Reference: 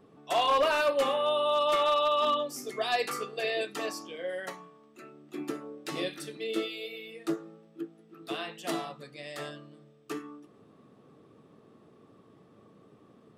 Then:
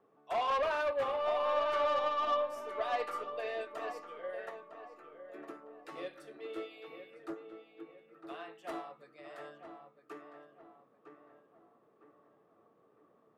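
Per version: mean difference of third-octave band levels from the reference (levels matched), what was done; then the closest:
6.0 dB: three-way crossover with the lows and the highs turned down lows −14 dB, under 410 Hz, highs −15 dB, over 2,000 Hz
soft clipping −26.5 dBFS, distortion −13 dB
on a send: feedback echo with a low-pass in the loop 956 ms, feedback 44%, low-pass 2,000 Hz, level −7 dB
on the sum: expander for the loud parts 1.5 to 1, over −40 dBFS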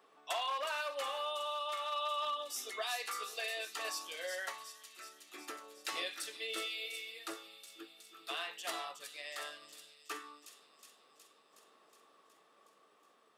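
10.5 dB: high-pass filter 890 Hz 12 dB per octave
downward compressor 6 to 1, threshold −36 dBFS, peak gain reduction 11.5 dB
shaped tremolo saw down 0.52 Hz, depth 30%
on a send: delay with a high-pass on its return 367 ms, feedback 68%, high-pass 4,900 Hz, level −5 dB
on the sum: level +2 dB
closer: first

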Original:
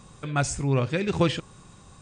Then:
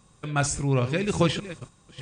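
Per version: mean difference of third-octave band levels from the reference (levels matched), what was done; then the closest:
3.5 dB: delay that plays each chunk backwards 411 ms, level −11.5 dB
noise gate −40 dBFS, range −9 dB
high-shelf EQ 6,000 Hz +4.5 dB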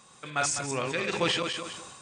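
8.5 dB: feedback delay that plays each chunk backwards 102 ms, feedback 44%, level −4 dB
high-pass filter 940 Hz 6 dB per octave
level that may fall only so fast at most 36 dB per second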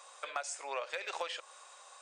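14.5 dB: elliptic high-pass filter 560 Hz, stop band 80 dB
downward compressor 12 to 1, threshold −35 dBFS, peak gain reduction 14.5 dB
hard clipping −27 dBFS, distortion −24 dB
level +1 dB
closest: first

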